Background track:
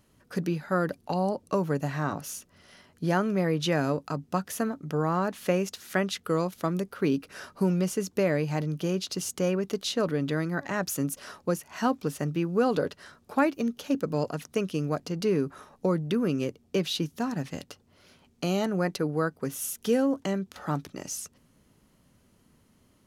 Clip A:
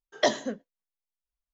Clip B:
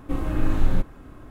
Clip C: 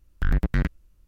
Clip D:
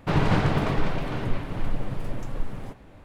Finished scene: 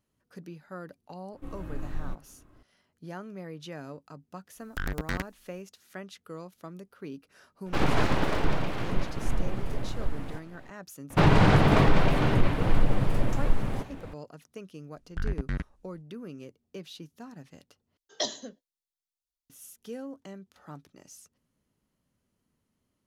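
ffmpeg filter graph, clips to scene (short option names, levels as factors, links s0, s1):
-filter_complex "[3:a]asplit=2[s0][s1];[4:a]asplit=2[s2][s3];[0:a]volume=0.178[s4];[s0]bass=f=250:g=-11,treble=f=4000:g=10[s5];[s2]aeval=exprs='abs(val(0))':c=same[s6];[s3]alimiter=level_in=5.01:limit=0.891:release=50:level=0:latency=1[s7];[s1]aresample=22050,aresample=44100[s8];[1:a]highshelf=f=2900:t=q:w=1.5:g=9[s9];[s4]asplit=2[s10][s11];[s10]atrim=end=17.974[s12];[s9]atrim=end=1.53,asetpts=PTS-STARTPTS,volume=0.316[s13];[s11]atrim=start=19.496[s14];[2:a]atrim=end=1.3,asetpts=PTS-STARTPTS,volume=0.188,afade=t=in:d=0.004:c=hsin,afade=t=out:st=1.296:d=0.004:c=hsin,adelay=1330[s15];[s5]atrim=end=1.07,asetpts=PTS-STARTPTS,volume=0.841,afade=t=in:d=0.004:c=hsin,afade=t=out:st=1.066:d=0.004:c=hsin,adelay=4550[s16];[s6]atrim=end=3.04,asetpts=PTS-STARTPTS,volume=0.944,afade=t=in:d=0.004:c=hsin,afade=t=out:st=3.036:d=0.004:c=hsin,adelay=7660[s17];[s7]atrim=end=3.04,asetpts=PTS-STARTPTS,volume=0.376,afade=t=in:d=0.004:c=hsin,afade=t=out:st=3.036:d=0.004:c=hsin,adelay=11100[s18];[s8]atrim=end=1.07,asetpts=PTS-STARTPTS,volume=0.376,afade=t=in:d=0.004:c=hsin,afade=t=out:st=1.066:d=0.004:c=hsin,adelay=14950[s19];[s12][s13]acrossfade=d=0.004:c1=hsin:c2=hsin[s20];[s20][s14]acrossfade=d=0.004:c1=hsin:c2=hsin[s21];[s21][s15][s16][s17][s18][s19]amix=inputs=6:normalize=0"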